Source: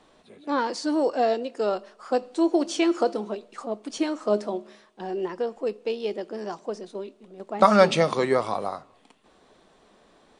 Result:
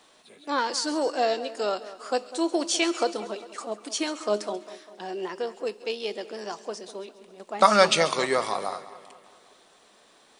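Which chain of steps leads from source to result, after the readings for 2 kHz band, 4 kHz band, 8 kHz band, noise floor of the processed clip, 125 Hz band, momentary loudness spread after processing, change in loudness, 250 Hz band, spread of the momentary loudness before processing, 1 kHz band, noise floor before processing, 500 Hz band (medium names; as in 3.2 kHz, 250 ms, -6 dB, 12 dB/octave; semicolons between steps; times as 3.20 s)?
+3.0 dB, +6.0 dB, +8.5 dB, -58 dBFS, -7.5 dB, 17 LU, -1.0 dB, -5.5 dB, 15 LU, 0.0 dB, -59 dBFS, -2.5 dB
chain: tilt EQ +3 dB/octave; on a send: two-band feedback delay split 2.4 kHz, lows 200 ms, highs 136 ms, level -15.5 dB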